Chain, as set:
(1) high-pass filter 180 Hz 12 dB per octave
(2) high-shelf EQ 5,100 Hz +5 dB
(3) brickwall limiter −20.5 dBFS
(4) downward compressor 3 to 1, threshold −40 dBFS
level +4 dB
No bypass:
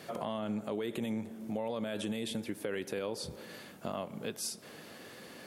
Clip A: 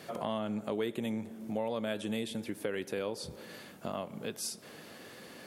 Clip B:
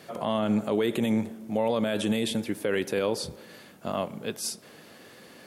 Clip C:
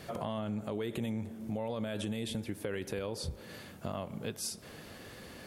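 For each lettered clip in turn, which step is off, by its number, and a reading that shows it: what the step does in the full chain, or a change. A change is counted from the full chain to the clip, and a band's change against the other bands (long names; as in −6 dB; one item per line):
3, change in momentary loudness spread +1 LU
4, average gain reduction 5.5 dB
1, 125 Hz band +6.5 dB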